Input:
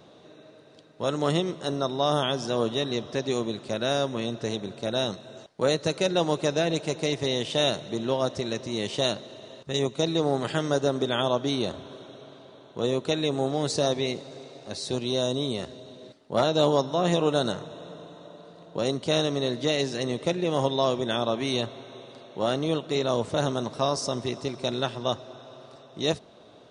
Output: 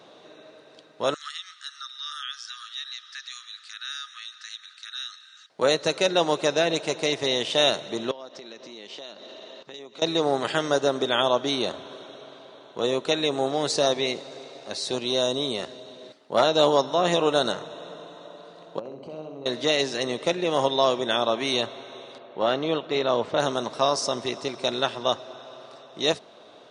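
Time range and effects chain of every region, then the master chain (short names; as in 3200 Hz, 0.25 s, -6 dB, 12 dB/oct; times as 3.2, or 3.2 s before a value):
1.14–5.5 rippled Chebyshev high-pass 1200 Hz, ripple 6 dB + compressor 1.5:1, threshold -44 dBFS
8.11–10.02 Chebyshev band-pass 220–5100 Hz + compressor 5:1, threshold -41 dBFS
18.79–19.46 running mean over 25 samples + compressor, threshold -36 dBFS + flutter echo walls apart 11 m, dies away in 0.69 s
22.18–23.4 LPF 3800 Hz + mismatched tape noise reduction decoder only
whole clip: HPF 590 Hz 6 dB/oct; high shelf 7900 Hz -7.5 dB; gain +6 dB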